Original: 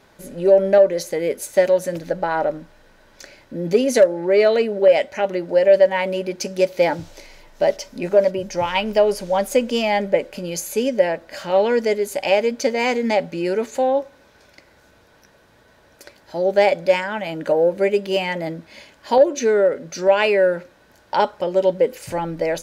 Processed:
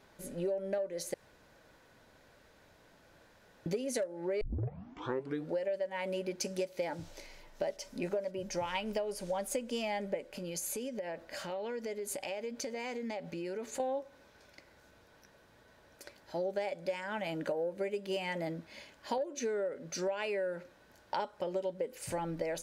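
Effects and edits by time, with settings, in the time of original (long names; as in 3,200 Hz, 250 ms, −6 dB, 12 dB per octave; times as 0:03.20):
0:01.14–0:03.66: fill with room tone
0:04.41: tape start 1.15 s
0:10.25–0:13.80: downward compressor 5 to 1, threshold −28 dBFS
whole clip: dynamic equaliser 9,000 Hz, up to +7 dB, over −51 dBFS, Q 1.8; downward compressor 12 to 1, threshold −23 dBFS; level −8.5 dB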